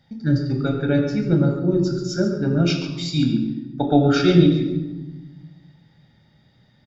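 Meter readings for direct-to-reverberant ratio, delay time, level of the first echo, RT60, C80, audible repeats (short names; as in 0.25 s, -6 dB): 2.5 dB, 0.139 s, -11.0 dB, 1.1 s, 6.0 dB, 1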